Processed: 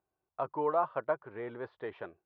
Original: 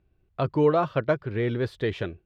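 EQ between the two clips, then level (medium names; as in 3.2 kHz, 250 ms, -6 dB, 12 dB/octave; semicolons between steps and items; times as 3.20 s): band-pass filter 920 Hz, Q 2.2; distance through air 160 m; 0.0 dB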